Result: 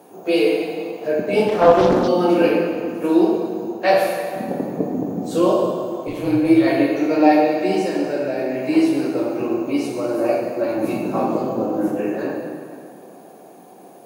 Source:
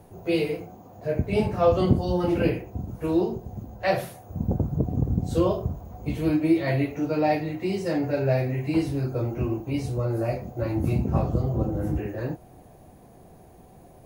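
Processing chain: high-pass 230 Hz 24 dB/octave; band-stop 2 kHz, Q 13; 6.07–6.47 s: AM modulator 180 Hz, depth 80%; 7.76–8.56 s: compression, threshold -28 dBFS, peak gain reduction 8 dB; plate-style reverb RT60 2.3 s, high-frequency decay 0.75×, DRR -0.5 dB; 1.48–2.08 s: loudspeaker Doppler distortion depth 0.7 ms; trim +6 dB

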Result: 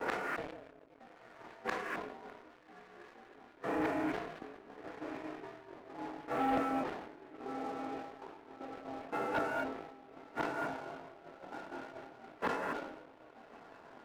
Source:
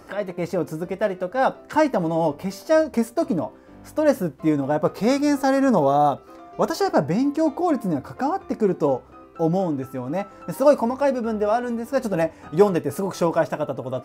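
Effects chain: short-time spectra conjugated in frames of 52 ms; recorder AGC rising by 7.5 dB/s; ring modulator 270 Hz; peak limiter -19 dBFS, peak gain reduction 10.5 dB; inverted gate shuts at -33 dBFS, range -36 dB; echo that smears into a reverb 1265 ms, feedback 70%, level -10.5 dB; mistuned SSB -150 Hz 400–2900 Hz; gated-style reverb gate 270 ms rising, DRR 1.5 dB; waveshaping leveller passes 3; gate -50 dBFS, range -9 dB; decay stretcher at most 57 dB/s; trim +6.5 dB

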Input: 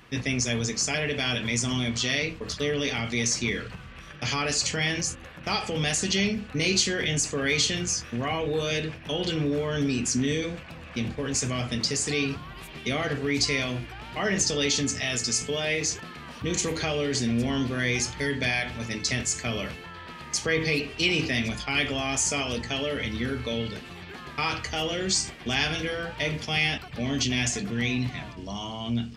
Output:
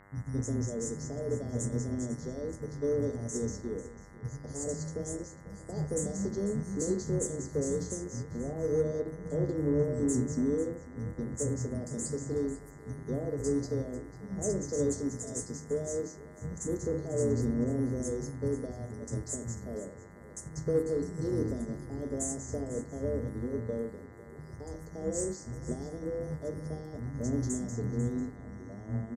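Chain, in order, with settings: elliptic band-stop 530–7400 Hz, stop band 70 dB; treble shelf 9.7 kHz -8 dB; three bands offset in time lows, highs, mids 30/220 ms, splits 200/5800 Hz; in parallel at -11 dB: saturation -26.5 dBFS, distortion -16 dB; on the sum: mains buzz 100 Hz, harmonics 21, -51 dBFS -1 dB/octave; delay 495 ms -14.5 dB; on a send at -19 dB: reverberation RT60 1.3 s, pre-delay 53 ms; on the sum: upward expansion 1.5:1, over -38 dBFS

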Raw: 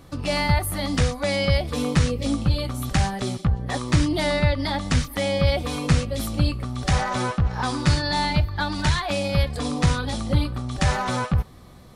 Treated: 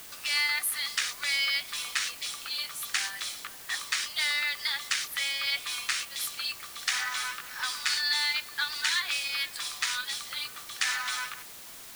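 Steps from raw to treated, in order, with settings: high-pass 1.5 kHz 24 dB/octave; in parallel at -8.5 dB: word length cut 6-bit, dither triangular; on the sum: trim -1.5 dB

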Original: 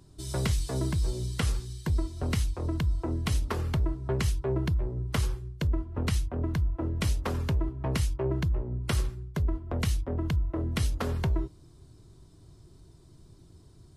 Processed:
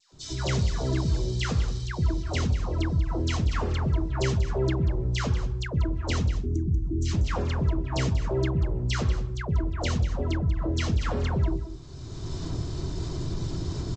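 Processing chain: recorder AGC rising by 23 dB/s; time-frequency box 6.27–7.04 s, 420–5700 Hz -29 dB; hum notches 50/100/150/200/250/300/350/400/450 Hz; phase dispersion lows, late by 125 ms, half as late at 1.3 kHz; on a send: delay 189 ms -12 dB; on the sum: trim +3.5 dB; G.722 64 kbps 16 kHz

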